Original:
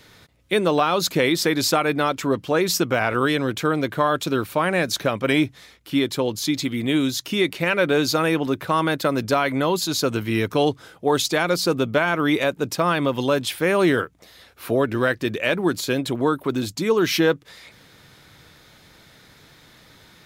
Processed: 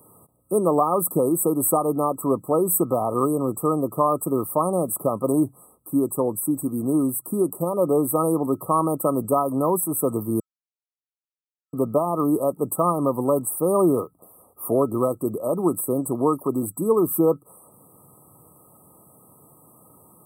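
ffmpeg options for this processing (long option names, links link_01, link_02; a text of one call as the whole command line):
ffmpeg -i in.wav -filter_complex "[0:a]asettb=1/sr,asplit=3[link_01][link_02][link_03];[link_01]atrim=end=13.754[link_04];[link_02]atrim=start=13.75:end=14.68,asetpts=PTS-STARTPTS,afade=type=in:duration=0.004:curve=qsin,afade=type=out:start_time=0.926:duration=0.004:curve=qsin,equalizer=frequency=7100:width=3:gain=-10[link_05];[link_03]atrim=start=14.676[link_06];[link_04][link_05]acrossfade=duration=0.004:curve1=hsin:curve2=qsin[link_07];[link_07][link_06]acrossfade=duration=0.004:curve1=qsin:curve2=hsin,asplit=3[link_08][link_09][link_10];[link_08]atrim=end=10.4,asetpts=PTS-STARTPTS,afade=type=out:start_time=10.396:duration=0.004:curve=hsin[link_11];[link_09]atrim=start=10.4:end=11.73,asetpts=PTS-STARTPTS,volume=0[link_12];[link_10]atrim=start=11.73,asetpts=PTS-STARTPTS,afade=type=in:duration=0.004:curve=hsin[link_13];[link_11][link_12][link_13]concat=n=3:v=0:a=1,afftfilt=real='re*(1-between(b*sr/4096,1300,7800))':imag='im*(1-between(b*sr/4096,1300,7800))':win_size=4096:overlap=0.75,highpass=120,highshelf=frequency=5000:gain=10" out.wav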